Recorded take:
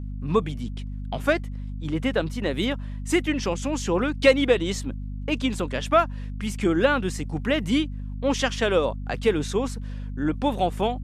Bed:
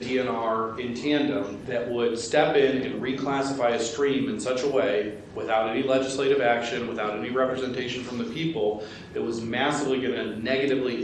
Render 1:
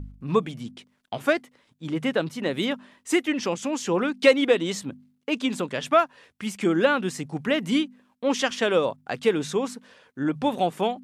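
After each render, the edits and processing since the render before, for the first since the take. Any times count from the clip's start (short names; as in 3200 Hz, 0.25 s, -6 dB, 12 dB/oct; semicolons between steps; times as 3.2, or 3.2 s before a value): de-hum 50 Hz, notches 5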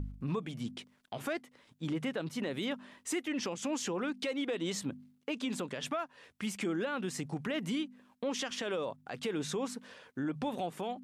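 compressor 2:1, threshold -34 dBFS, peak gain reduction 12.5 dB; limiter -26.5 dBFS, peak gain reduction 10.5 dB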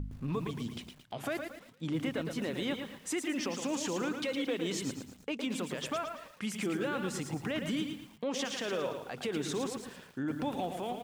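frequency-shifting echo 0.111 s, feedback 45%, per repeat -31 Hz, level -12.5 dB; lo-fi delay 0.112 s, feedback 35%, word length 9-bit, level -6.5 dB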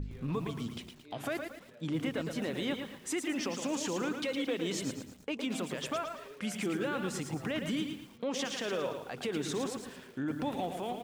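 add bed -29.5 dB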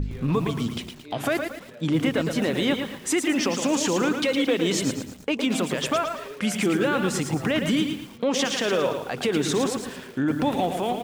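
gain +11 dB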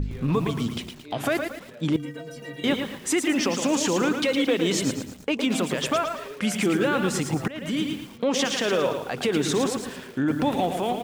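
1.96–2.64 metallic resonator 140 Hz, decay 0.45 s, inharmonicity 0.03; 7.48–7.95 fade in linear, from -19 dB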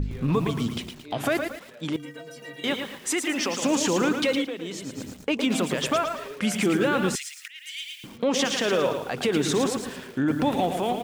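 1.57–3.63 low shelf 340 Hz -9.5 dB; 4.35–5.06 dip -11 dB, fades 0.14 s; 7.15–8.04 steep high-pass 2000 Hz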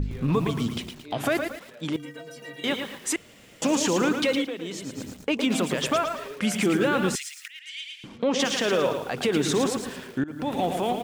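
3.16–3.62 room tone; 7.59–8.4 air absorption 68 m; 10.24–10.7 fade in, from -20.5 dB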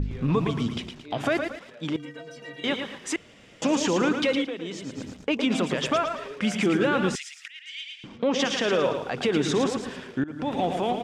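LPF 5800 Hz 12 dB/oct; notch 4200 Hz, Q 17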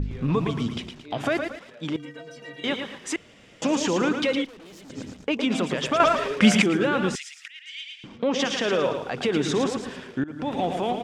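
4.45–4.9 tube stage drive 44 dB, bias 0.65; 6–6.62 gain +9.5 dB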